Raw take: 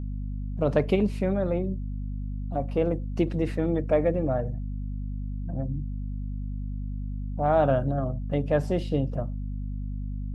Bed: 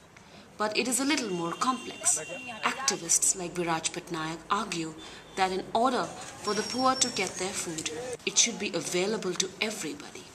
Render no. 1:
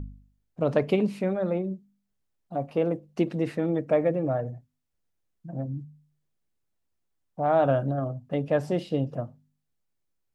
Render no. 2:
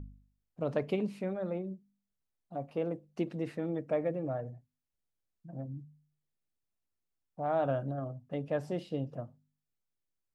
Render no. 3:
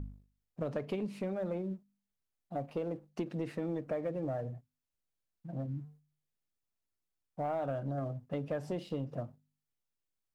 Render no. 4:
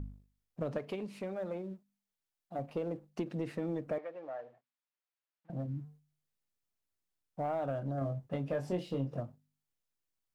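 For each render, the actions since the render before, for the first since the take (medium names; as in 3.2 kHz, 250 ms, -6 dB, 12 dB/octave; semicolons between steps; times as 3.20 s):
de-hum 50 Hz, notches 5
trim -8.5 dB
compression 6:1, threshold -35 dBFS, peak gain reduction 9.5 dB; waveshaping leveller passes 1
0.78–2.59 s: bass shelf 260 Hz -8.5 dB; 3.98–5.50 s: band-pass 710–3400 Hz; 7.99–9.20 s: doubling 22 ms -5.5 dB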